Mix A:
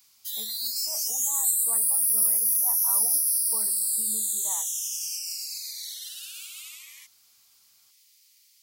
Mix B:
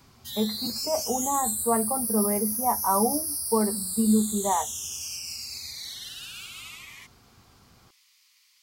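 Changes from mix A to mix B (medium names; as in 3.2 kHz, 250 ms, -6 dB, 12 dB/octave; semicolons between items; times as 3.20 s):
background -4.0 dB; master: remove pre-emphasis filter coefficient 0.97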